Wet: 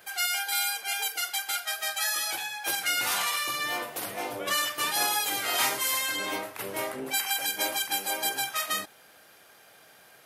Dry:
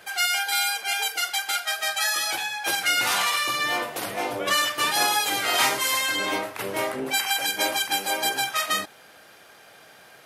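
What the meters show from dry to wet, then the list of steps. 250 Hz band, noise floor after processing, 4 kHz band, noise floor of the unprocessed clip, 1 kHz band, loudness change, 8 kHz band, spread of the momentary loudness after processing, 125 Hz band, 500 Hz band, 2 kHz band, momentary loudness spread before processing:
−6.0 dB, −56 dBFS, −5.0 dB, −51 dBFS, −6.0 dB, −4.5 dB, −2.5 dB, 8 LU, −6.0 dB, −6.0 dB, −6.0 dB, 7 LU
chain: high-shelf EQ 11,000 Hz +11.5 dB
level −6 dB

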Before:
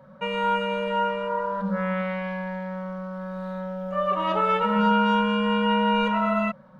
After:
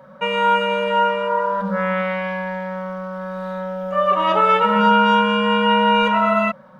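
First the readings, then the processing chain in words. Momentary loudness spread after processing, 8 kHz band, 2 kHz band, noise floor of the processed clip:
13 LU, can't be measured, +8.0 dB, −44 dBFS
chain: low-shelf EQ 200 Hz −11 dB
notch filter 4,200 Hz, Q 18
level +8 dB

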